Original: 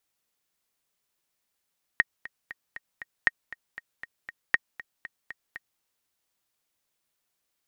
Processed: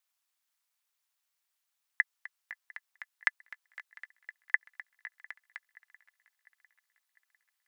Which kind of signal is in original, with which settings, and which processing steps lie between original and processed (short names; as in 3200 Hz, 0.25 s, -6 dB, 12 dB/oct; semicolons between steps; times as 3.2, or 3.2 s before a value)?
metronome 236 bpm, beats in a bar 5, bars 3, 1870 Hz, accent 18.5 dB -6.5 dBFS
HPF 820 Hz 24 dB/oct; ring modulator 130 Hz; swung echo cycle 0.701 s, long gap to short 3:1, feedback 47%, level -22 dB